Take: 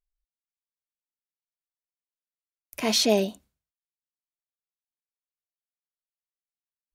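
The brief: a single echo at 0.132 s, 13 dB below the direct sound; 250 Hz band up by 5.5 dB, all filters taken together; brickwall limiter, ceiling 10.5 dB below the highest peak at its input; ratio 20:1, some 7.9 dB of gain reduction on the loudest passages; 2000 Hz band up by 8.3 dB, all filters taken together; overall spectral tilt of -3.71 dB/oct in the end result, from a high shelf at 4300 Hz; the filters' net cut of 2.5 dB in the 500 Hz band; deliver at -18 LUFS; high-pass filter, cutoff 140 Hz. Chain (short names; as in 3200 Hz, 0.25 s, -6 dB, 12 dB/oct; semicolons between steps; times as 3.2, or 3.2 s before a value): HPF 140 Hz; bell 250 Hz +8.5 dB; bell 500 Hz -6.5 dB; bell 2000 Hz +8.5 dB; high shelf 4300 Hz +8.5 dB; compressor 20:1, threshold -21 dBFS; limiter -20.5 dBFS; echo 0.132 s -13 dB; gain +12.5 dB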